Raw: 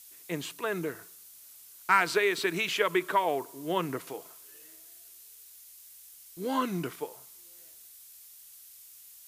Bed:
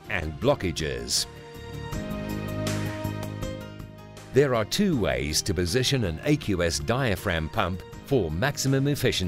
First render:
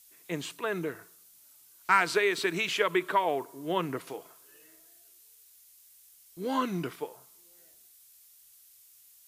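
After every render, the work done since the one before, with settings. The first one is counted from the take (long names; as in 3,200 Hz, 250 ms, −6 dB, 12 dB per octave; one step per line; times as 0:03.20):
noise reduction from a noise print 6 dB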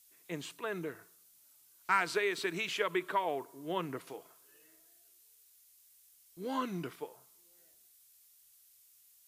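level −6 dB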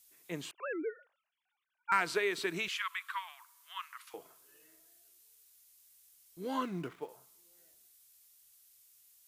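0:00.51–0:01.92: three sine waves on the formant tracks
0:02.68–0:04.14: elliptic high-pass filter 1,100 Hz, stop band 60 dB
0:06.63–0:07.09: running median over 9 samples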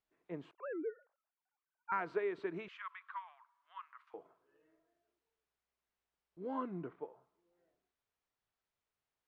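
Bessel low-pass filter 810 Hz, order 2
low-shelf EQ 240 Hz −7.5 dB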